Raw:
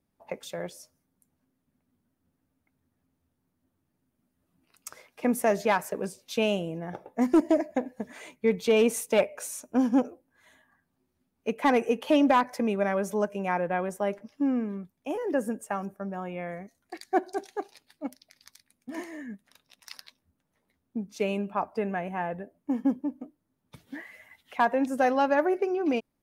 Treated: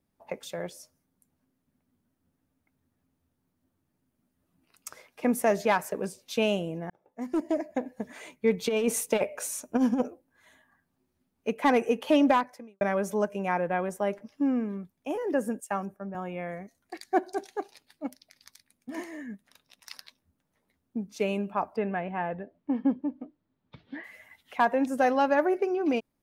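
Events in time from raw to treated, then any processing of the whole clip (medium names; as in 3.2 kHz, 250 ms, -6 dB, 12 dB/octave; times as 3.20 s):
6.90–8.02 s: fade in
8.61–10.08 s: compressor with a negative ratio -23 dBFS, ratio -0.5
12.31–12.81 s: fade out quadratic
15.60–16.15 s: three bands expanded up and down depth 70%
21.76–24.04 s: steep low-pass 4.4 kHz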